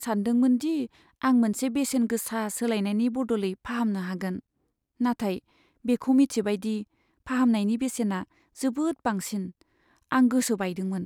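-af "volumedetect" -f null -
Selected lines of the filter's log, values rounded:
mean_volume: -26.6 dB
max_volume: -11.3 dB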